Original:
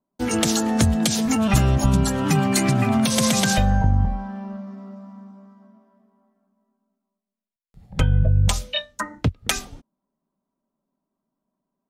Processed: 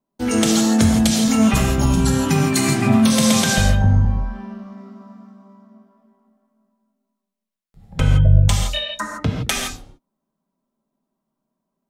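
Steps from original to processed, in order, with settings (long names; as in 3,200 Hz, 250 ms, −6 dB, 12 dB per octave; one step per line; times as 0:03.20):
reverb whose tail is shaped and stops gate 190 ms flat, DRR 0 dB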